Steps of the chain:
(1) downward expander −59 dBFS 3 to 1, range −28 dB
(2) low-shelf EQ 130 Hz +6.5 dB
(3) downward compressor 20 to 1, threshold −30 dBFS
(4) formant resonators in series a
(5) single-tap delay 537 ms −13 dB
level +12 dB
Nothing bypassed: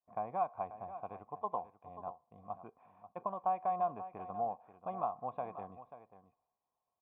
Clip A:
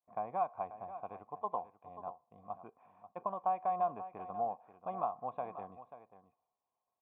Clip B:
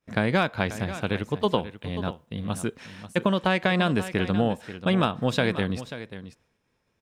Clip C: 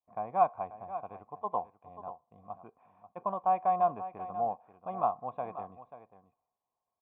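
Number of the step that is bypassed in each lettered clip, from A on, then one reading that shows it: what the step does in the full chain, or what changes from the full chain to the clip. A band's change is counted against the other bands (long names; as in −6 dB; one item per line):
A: 2, 125 Hz band −2.5 dB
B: 4, 1 kHz band −22.0 dB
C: 3, average gain reduction 2.0 dB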